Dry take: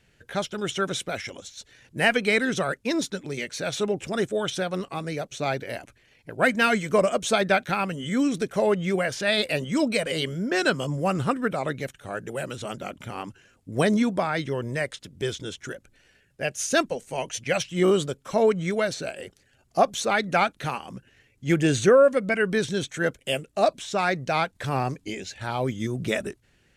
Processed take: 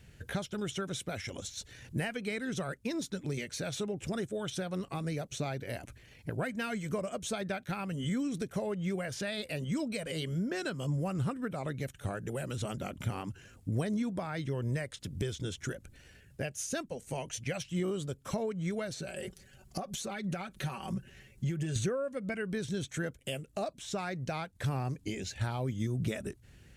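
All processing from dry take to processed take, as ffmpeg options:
-filter_complex "[0:a]asettb=1/sr,asplit=3[a][b][c];[a]atrim=end=19.004[d];[b]atrim=start=19:end=21.76,asetpts=PTS-STARTPTS,afade=t=in:d=0.004:c=qsin,afade=t=out:st=2.756:d=0.004:c=qsin,aecho=1:1:5.3:0.71,atrim=end_sample=121716,acompressor=threshold=-33dB:ratio=4:attack=3.2:release=140:knee=1:detection=peak[e];[c]atrim=start=21.756[f];[d][e]acrossfade=d=0.004:c1=hsin:c2=qsin[g];[g][f]acrossfade=d=0.004:c1=qsin:c2=hsin,highshelf=f=8.4k:g=8.5,acompressor=threshold=-38dB:ratio=4,equalizer=f=74:w=0.42:g=12"

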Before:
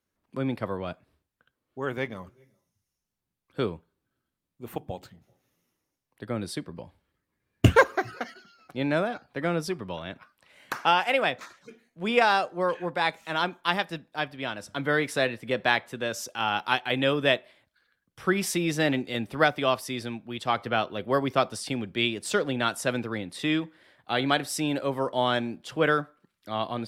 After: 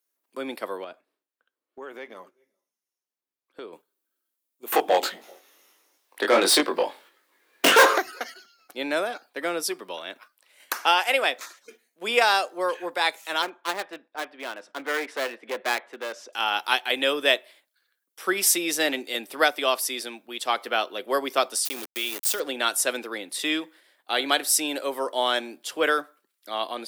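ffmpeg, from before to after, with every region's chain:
-filter_complex "[0:a]asettb=1/sr,asplit=3[a][b][c];[a]atrim=end=0.844[d];[b]atrim=start=0.84:end=3.73,asetpts=PTS-STARTPTS,afade=t=in:d=0.004:c=qsin,afade=t=out:st=2.886:d=0.004:c=qsin,lowpass=f=2.1k:p=1,acompressor=threshold=-34dB:ratio=4:attack=3.2:release=140:knee=1:detection=peak[e];[c]atrim=start=3.726[f];[d][e]acrossfade=d=0.004:c1=hsin:c2=qsin[g];[g][f]acrossfade=d=0.004:c1=qsin:c2=hsin,asettb=1/sr,asplit=3[h][i][j];[h]atrim=end=4.724[k];[i]atrim=start=4.72:end=7.98,asetpts=PTS-STARTPTS,afade=t=in:d=0.004:c=qsin,afade=t=out:st=3.256:d=0.004:c=qsin,equalizer=f=3.6k:t=o:w=0.43:g=3,flanger=delay=20:depth=2.3:speed=1.6,asplit=2[l][m];[m]highpass=f=720:p=1,volume=34dB,asoftclip=type=tanh:threshold=-6.5dB[n];[l][n]amix=inputs=2:normalize=0,lowpass=f=1.6k:p=1,volume=-6dB[o];[j]atrim=start=7.976[p];[k][o]acrossfade=d=0.004:c1=hsin:c2=qsin[q];[q][p]acrossfade=d=0.004:c1=qsin:c2=hsin,asettb=1/sr,asplit=3[r][s][t];[r]atrim=end=13.424[u];[s]atrim=start=13.42:end=16.33,asetpts=PTS-STARTPTS,afade=t=in:d=0.004:c=qsin,afade=t=out:st=2.906:d=0.004:c=qsin,highpass=170,lowpass=2.1k,aeval=exprs='clip(val(0),-1,0.0211)':c=same[v];[t]atrim=start=16.326[w];[u][v]acrossfade=d=0.004:c1=hsin:c2=qsin[x];[x][w]acrossfade=d=0.004:c1=qsin:c2=hsin,asettb=1/sr,asplit=3[y][z][aa];[y]atrim=end=21.654[ab];[z]atrim=start=21.65:end=22.4,asetpts=PTS-STARTPTS,afade=t=in:d=0.004:c=qsin,afade=t=out:st=0.746:d=0.004:c=qsin,aeval=exprs='val(0)*gte(abs(val(0)),0.0224)':c=same,bandreject=f=7.6k:w=13,acompressor=threshold=-29dB:ratio=3:attack=3.2:release=140:knee=1:detection=peak[ac];[aa]atrim=start=22.396[ad];[ab][ac]acrossfade=d=0.004:c1=hsin:c2=qsin[ae];[ae][ad]acrossfade=d=0.004:c1=qsin:c2=hsin,highpass=f=310:w=0.5412,highpass=f=310:w=1.3066,aemphasis=mode=production:type=75kf,agate=range=-6dB:threshold=-50dB:ratio=16:detection=peak"

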